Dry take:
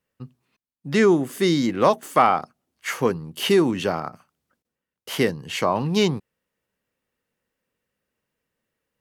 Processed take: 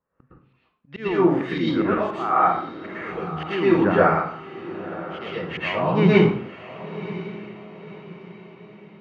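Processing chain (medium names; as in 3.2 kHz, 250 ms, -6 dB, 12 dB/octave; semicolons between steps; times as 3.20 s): LFO low-pass saw up 1.9 Hz 1–3.5 kHz; slow attack 364 ms; distance through air 63 m; echo that smears into a reverb 1020 ms, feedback 43%, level -14.5 dB; plate-style reverb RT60 0.56 s, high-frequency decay 0.8×, pre-delay 100 ms, DRR -9 dB; trim -2.5 dB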